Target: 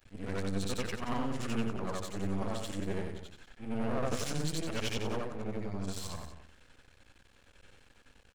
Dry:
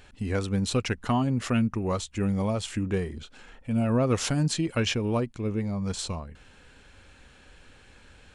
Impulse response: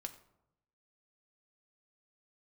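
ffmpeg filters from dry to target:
-filter_complex "[0:a]afftfilt=real='re':imag='-im':win_size=8192:overlap=0.75,aeval=exprs='max(val(0),0)':c=same,asplit=2[s0][s1];[s1]aecho=0:1:184:0.251[s2];[s0][s2]amix=inputs=2:normalize=0"

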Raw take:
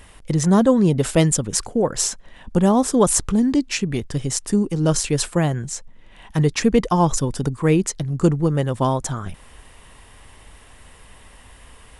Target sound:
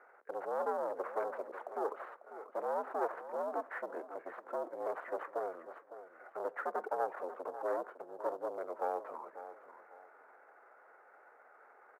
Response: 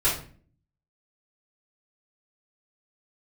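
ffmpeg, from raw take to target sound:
-filter_complex "[0:a]equalizer=f=1100:w=0.43:g=-13,aeval=exprs='(tanh(22.4*val(0)+0.25)-tanh(0.25))/22.4':c=same,highpass=f=590:t=q:w=0.5412,highpass=f=590:t=q:w=1.307,lowpass=f=2100:t=q:w=0.5176,lowpass=f=2100:t=q:w=0.7071,lowpass=f=2100:t=q:w=1.932,afreqshift=110,asplit=2[s0][s1];[s1]acrusher=bits=5:mode=log:mix=0:aa=0.000001,volume=0.335[s2];[s0][s2]amix=inputs=2:normalize=0,aecho=1:1:546|1092|1638:0.237|0.0711|0.0213,asplit=2[s3][s4];[1:a]atrim=start_sample=2205,asetrate=48510,aresample=44100[s5];[s4][s5]afir=irnorm=-1:irlink=0,volume=0.0299[s6];[s3][s6]amix=inputs=2:normalize=0,asetrate=31183,aresample=44100,atempo=1.41421,volume=1.26"

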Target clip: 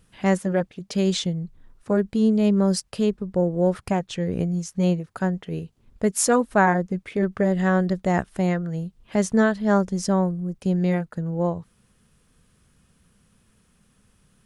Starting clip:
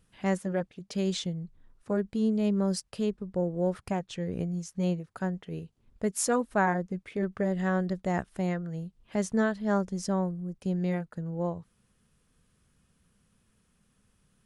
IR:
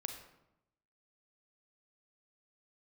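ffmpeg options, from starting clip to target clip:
-af "volume=2.37"

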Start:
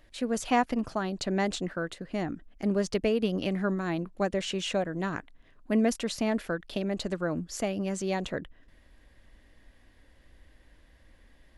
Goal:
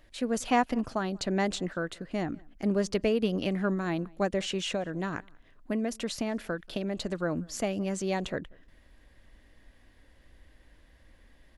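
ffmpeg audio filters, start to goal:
-filter_complex "[0:a]asettb=1/sr,asplit=3[s0][s1][s2];[s0]atrim=end=4.604[s3];[s1]atrim=start=4.6:end=7.15,asetpts=PTS-STARTPTS,afade=t=in:d=0.004:c=qsin,afade=t=out:st=2.546:d=0.004:c=qsin,acompressor=threshold=0.0447:ratio=6[s4];[s2]atrim=start=7.146[s5];[s3][s4]acrossfade=d=0.004:c1=hsin:c2=qsin[s6];[s6][s5]acrossfade=d=0.004:c1=qsin:c2=hsin,asplit=2[s7][s8];[s8]adelay=186.6,volume=0.0447,highshelf=f=4000:g=-4.2[s9];[s7][s9]amix=inputs=2:normalize=0"

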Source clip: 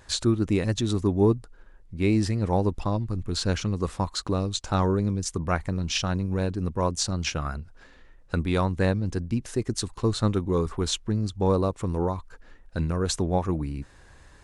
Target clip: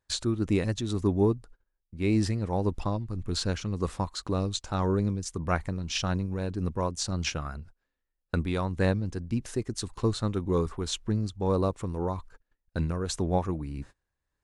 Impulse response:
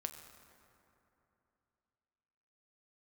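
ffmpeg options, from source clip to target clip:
-af "agate=range=0.0398:threshold=0.00794:ratio=16:detection=peak,tremolo=f=1.8:d=0.39,volume=0.841"

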